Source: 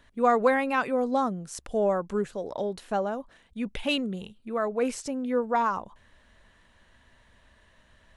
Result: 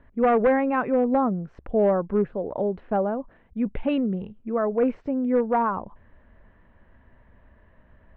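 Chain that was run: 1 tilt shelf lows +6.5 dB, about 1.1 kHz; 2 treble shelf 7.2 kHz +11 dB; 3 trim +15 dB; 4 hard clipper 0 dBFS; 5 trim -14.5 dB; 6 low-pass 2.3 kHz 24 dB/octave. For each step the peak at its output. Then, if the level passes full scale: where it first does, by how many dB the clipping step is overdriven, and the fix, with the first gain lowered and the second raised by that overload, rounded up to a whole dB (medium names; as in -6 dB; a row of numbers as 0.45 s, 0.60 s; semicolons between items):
-6.5 dBFS, -6.5 dBFS, +8.5 dBFS, 0.0 dBFS, -14.5 dBFS, -13.0 dBFS; step 3, 8.5 dB; step 3 +6 dB, step 5 -5.5 dB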